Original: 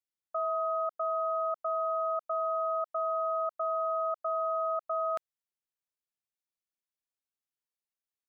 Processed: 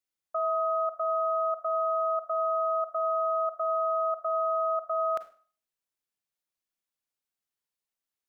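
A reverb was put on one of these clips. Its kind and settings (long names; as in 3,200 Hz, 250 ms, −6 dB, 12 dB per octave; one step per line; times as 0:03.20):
four-comb reverb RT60 0.41 s, combs from 33 ms, DRR 10.5 dB
level +2.5 dB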